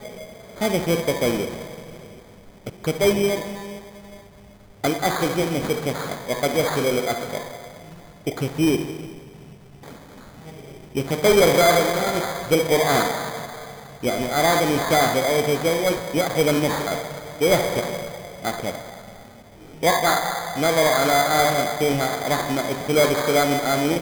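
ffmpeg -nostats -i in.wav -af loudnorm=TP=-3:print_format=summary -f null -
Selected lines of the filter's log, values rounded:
Input Integrated:    -21.0 LUFS
Input True Peak:      -7.7 dBTP
Input LRA:             6.8 LU
Input Threshold:     -32.1 LUFS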